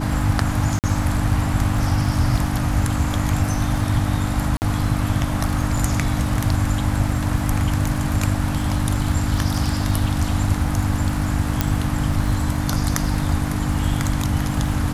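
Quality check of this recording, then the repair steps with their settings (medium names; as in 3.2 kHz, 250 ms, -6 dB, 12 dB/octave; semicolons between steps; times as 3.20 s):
crackle 40 per s -29 dBFS
hum 50 Hz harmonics 6 -25 dBFS
0.79–0.84 s: dropout 48 ms
4.57–4.62 s: dropout 49 ms
11.61 s: pop -3 dBFS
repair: de-click; de-hum 50 Hz, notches 6; interpolate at 0.79 s, 48 ms; interpolate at 4.57 s, 49 ms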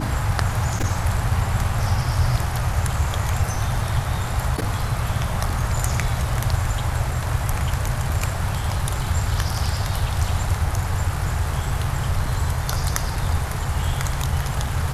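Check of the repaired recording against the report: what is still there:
nothing left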